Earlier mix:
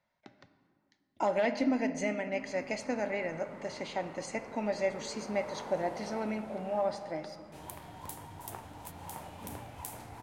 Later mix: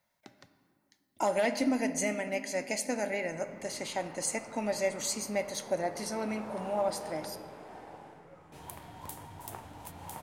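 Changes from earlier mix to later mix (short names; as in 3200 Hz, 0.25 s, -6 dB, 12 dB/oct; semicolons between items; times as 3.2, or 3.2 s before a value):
speech: remove air absorption 150 m; background: entry +1.00 s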